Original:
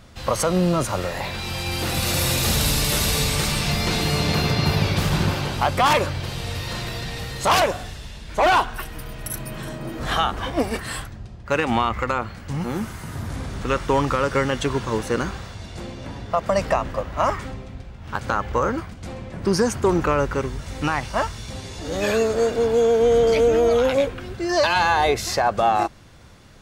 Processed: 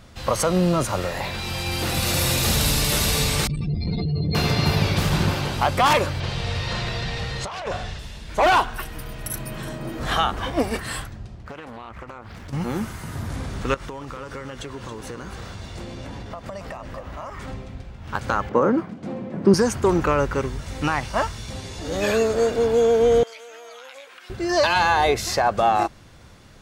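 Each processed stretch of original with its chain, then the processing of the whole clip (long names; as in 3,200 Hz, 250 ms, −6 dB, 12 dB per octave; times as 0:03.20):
0:03.47–0:04.35: expanding power law on the bin magnitudes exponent 3.2 + saturating transformer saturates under 170 Hz
0:06.20–0:07.99: low-pass filter 5,400 Hz + parametric band 290 Hz −8.5 dB 0.39 octaves + compressor whose output falls as the input rises −26 dBFS
0:11.35–0:12.53: downward compressor 20 to 1, threshold −33 dBFS + highs frequency-modulated by the lows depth 0.76 ms
0:13.74–0:17.48: downward compressor 20 to 1, threshold −30 dBFS + single-tap delay 275 ms −10 dB
0:18.49–0:19.54: high-pass filter 190 Hz 24 dB per octave + spectral tilt −4 dB per octave
0:23.23–0:24.30: high-pass filter 1,200 Hz + downward compressor 4 to 1, threshold −40 dBFS
whole clip: no processing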